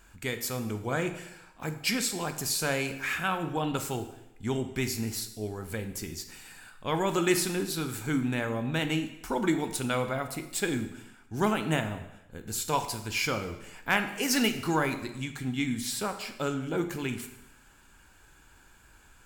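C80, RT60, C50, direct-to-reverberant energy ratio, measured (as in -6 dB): 12.5 dB, 0.90 s, 10.0 dB, 7.0 dB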